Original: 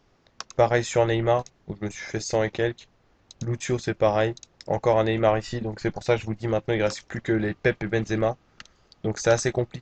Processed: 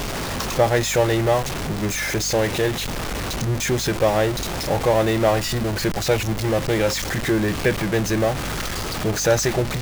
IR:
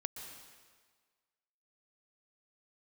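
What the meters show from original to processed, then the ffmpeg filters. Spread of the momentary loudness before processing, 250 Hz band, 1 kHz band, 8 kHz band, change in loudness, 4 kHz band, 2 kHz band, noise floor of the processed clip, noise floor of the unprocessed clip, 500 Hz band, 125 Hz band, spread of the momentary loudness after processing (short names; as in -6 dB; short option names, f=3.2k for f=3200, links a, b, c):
11 LU, +5.0 dB, +3.5 dB, +10.5 dB, +4.0 dB, +10.5 dB, +5.5 dB, -27 dBFS, -63 dBFS, +3.0 dB, +5.5 dB, 7 LU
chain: -af "aeval=exprs='val(0)+0.5*0.0891*sgn(val(0))':c=same,aeval=exprs='val(0)+0.0158*(sin(2*PI*50*n/s)+sin(2*PI*2*50*n/s)/2+sin(2*PI*3*50*n/s)/3+sin(2*PI*4*50*n/s)/4+sin(2*PI*5*50*n/s)/5)':c=same"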